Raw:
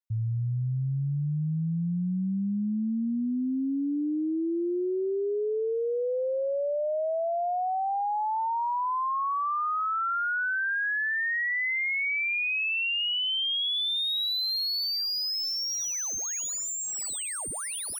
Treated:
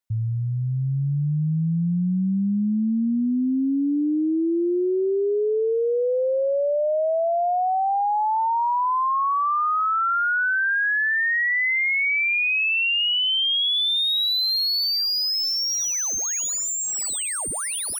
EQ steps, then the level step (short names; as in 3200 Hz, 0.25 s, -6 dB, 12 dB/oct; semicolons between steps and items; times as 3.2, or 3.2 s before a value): bell 120 Hz -3 dB 0.36 oct; +6.5 dB